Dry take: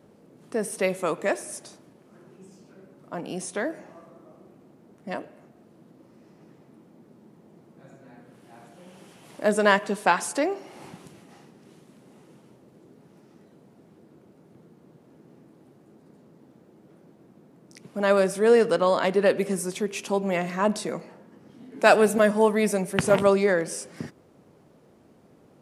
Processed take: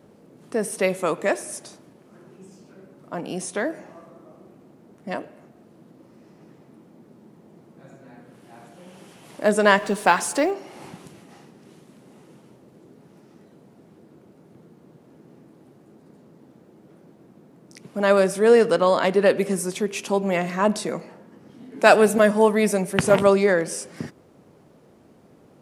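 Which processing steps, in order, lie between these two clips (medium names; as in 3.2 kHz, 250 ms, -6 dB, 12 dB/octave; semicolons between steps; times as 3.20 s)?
9.78–10.51 s: companding laws mixed up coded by mu; trim +3 dB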